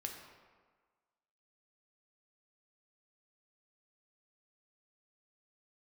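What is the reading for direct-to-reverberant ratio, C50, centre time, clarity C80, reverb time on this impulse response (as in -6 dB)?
1.5 dB, 4.5 dB, 44 ms, 6.5 dB, 1.5 s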